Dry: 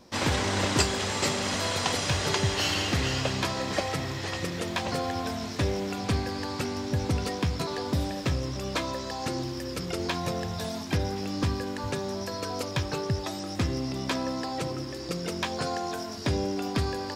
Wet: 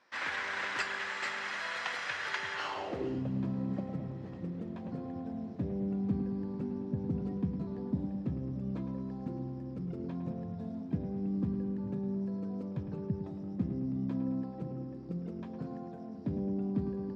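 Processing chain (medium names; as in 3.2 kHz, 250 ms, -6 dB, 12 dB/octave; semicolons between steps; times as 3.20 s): bucket-brigade echo 107 ms, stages 2048, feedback 70%, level -9.5 dB; band-pass sweep 1.7 kHz -> 200 Hz, 2.53–3.25 s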